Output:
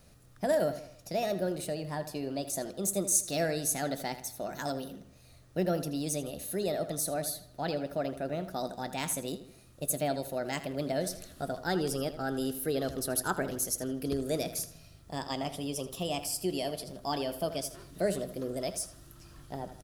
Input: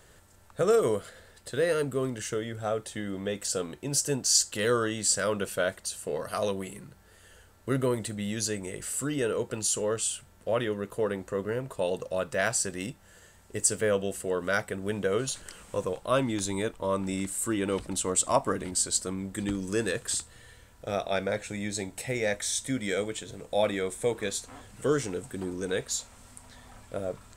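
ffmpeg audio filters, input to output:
-filter_complex "[0:a]equalizer=f=630:t=o:w=0.67:g=-11,equalizer=f=1.6k:t=o:w=0.67:g=-12,equalizer=f=10k:t=o:w=0.67:g=-10,asetrate=60858,aresample=44100,asplit=2[a][b];[b]adelay=80,lowpass=f=4.8k:p=1,volume=-12dB,asplit=2[c][d];[d]adelay=80,lowpass=f=4.8k:p=1,volume=0.45,asplit=2[e][f];[f]adelay=80,lowpass=f=4.8k:p=1,volume=0.45,asplit=2[g][h];[h]adelay=80,lowpass=f=4.8k:p=1,volume=0.45,asplit=2[i][j];[j]adelay=80,lowpass=f=4.8k:p=1,volume=0.45[k];[a][c][e][g][i][k]amix=inputs=6:normalize=0"

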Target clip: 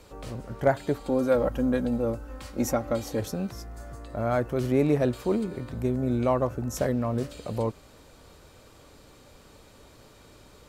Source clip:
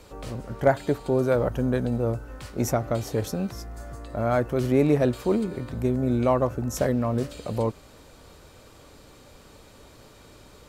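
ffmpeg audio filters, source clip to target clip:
-filter_complex "[0:a]asettb=1/sr,asplit=3[a][b][c];[a]atrim=end=0.964[d];[b]atrim=start=0.96:end=3.2,asetpts=PTS-STARTPTS,afade=t=in:d=0.004:c=qsin,afade=t=out:st=2.236:d=0.004:c=qsin,aecho=1:1:3.7:0.61,atrim=end_sample=98784[e];[c]atrim=start=3.196[f];[d][e]acrossfade=d=0.004:c1=hsin:c2=qsin[g];[g][f]acrossfade=d=0.004:c1=qsin:c2=hsin,volume=-2.5dB"

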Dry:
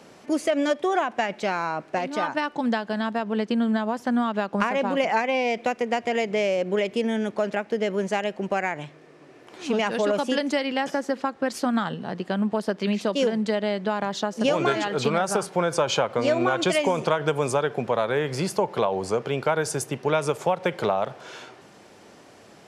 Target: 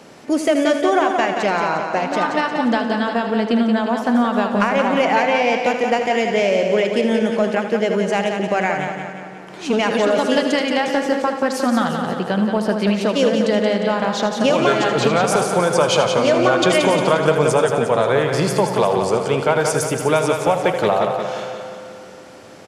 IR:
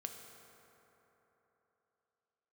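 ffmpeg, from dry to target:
-filter_complex "[0:a]aecho=1:1:177|354|531|708|885|1062|1239:0.473|0.251|0.133|0.0704|0.0373|0.0198|0.0105,acontrast=44,asplit=2[a][b];[1:a]atrim=start_sample=2205,asetrate=48510,aresample=44100,adelay=79[c];[b][c]afir=irnorm=-1:irlink=0,volume=-5dB[d];[a][d]amix=inputs=2:normalize=0"

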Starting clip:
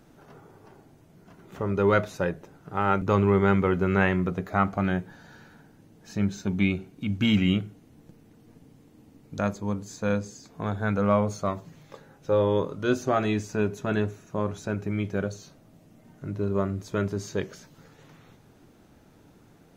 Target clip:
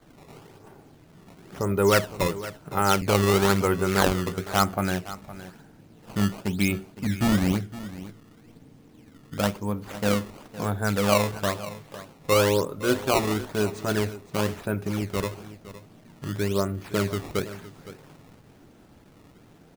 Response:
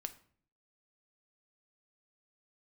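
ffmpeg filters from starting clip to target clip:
-filter_complex "[0:a]adynamicequalizer=threshold=0.0126:dfrequency=170:dqfactor=0.74:tfrequency=170:tqfactor=0.74:attack=5:release=100:ratio=0.375:range=3:mode=cutabove:tftype=bell,acrusher=samples=16:mix=1:aa=0.000001:lfo=1:lforange=25.6:lforate=1,asplit=2[a][b];[b]aecho=0:1:513:0.168[c];[a][c]amix=inputs=2:normalize=0,volume=2.5dB"

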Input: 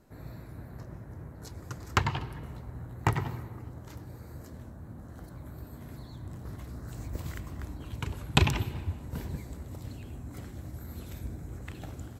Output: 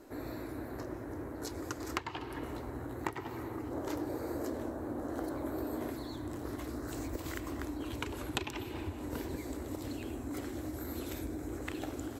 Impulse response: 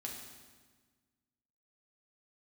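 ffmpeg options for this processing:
-filter_complex "[0:a]lowshelf=f=230:t=q:w=3:g=-8.5,acompressor=threshold=-42dB:ratio=6,asettb=1/sr,asplit=3[a][b][c];[a]atrim=end=3.714[d];[b]atrim=start=3.71:end=5.9,asetpts=PTS-STARTPTS,afade=t=in:d=0.004:c=qsin,afade=t=out:st=2.186:d=0.004:c=qsin,equalizer=f=570:w=0.64:g=6.5[e];[c]atrim=start=5.896[f];[d][e]acrossfade=d=0.004:c1=hsin:c2=qsin[g];[g][f]acrossfade=d=0.004:c1=qsin:c2=hsin,volume=7dB"

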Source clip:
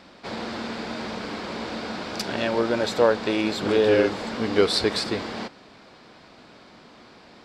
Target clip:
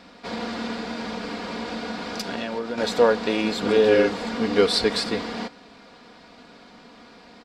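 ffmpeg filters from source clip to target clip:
-filter_complex "[0:a]aecho=1:1:4.2:0.52,asettb=1/sr,asplit=3[a][b][c];[a]atrim=end=0.744[d];[b]atrim=start=0.74:end=2.78,asetpts=PTS-STARTPTS,afade=t=in:d=0.004:c=qsin,afade=t=out:st=2.036:d=0.004:c=qsin,acompressor=threshold=-26dB:ratio=6[e];[c]atrim=start=2.776[f];[d][e]acrossfade=d=0.004:c1=hsin:c2=qsin[g];[g][f]acrossfade=d=0.004:c1=qsin:c2=hsin"

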